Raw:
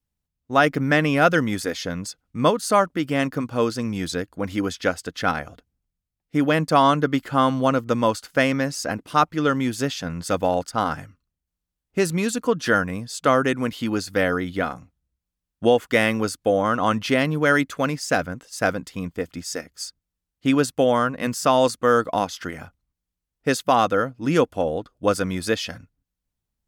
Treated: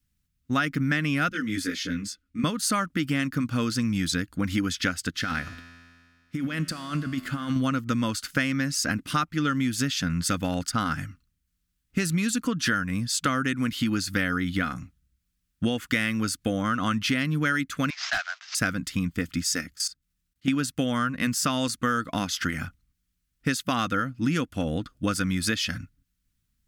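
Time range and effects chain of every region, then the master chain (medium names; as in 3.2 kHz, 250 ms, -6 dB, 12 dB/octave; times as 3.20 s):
1.29–2.44 s: treble shelf 3.7 kHz -7.5 dB + static phaser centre 330 Hz, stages 4 + detune thickener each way 10 cents
5.10–7.56 s: peaking EQ 170 Hz -4 dB 0.29 oct + compressor with a negative ratio -24 dBFS + feedback comb 85 Hz, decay 2 s, mix 70%
17.90–18.55 s: CVSD coder 32 kbps + Chebyshev high-pass 660 Hz, order 6 + hard clipper -20 dBFS
19.74–20.48 s: doubling 28 ms -4 dB + level held to a coarse grid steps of 17 dB
whole clip: high-order bell 610 Hz -13.5 dB; compression, threshold -30 dBFS; trim +7.5 dB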